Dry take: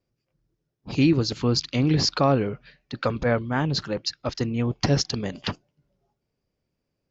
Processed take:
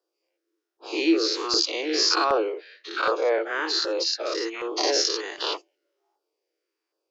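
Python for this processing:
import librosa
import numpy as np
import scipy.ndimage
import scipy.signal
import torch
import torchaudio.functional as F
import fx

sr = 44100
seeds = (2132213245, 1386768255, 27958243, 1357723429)

y = fx.spec_dilate(x, sr, span_ms=120)
y = scipy.signal.sosfilt(scipy.signal.cheby1(6, 3, 320.0, 'highpass', fs=sr, output='sos'), y)
y = fx.filter_lfo_notch(y, sr, shape='saw_down', hz=1.3, low_hz=440.0, high_hz=2400.0, q=1.3)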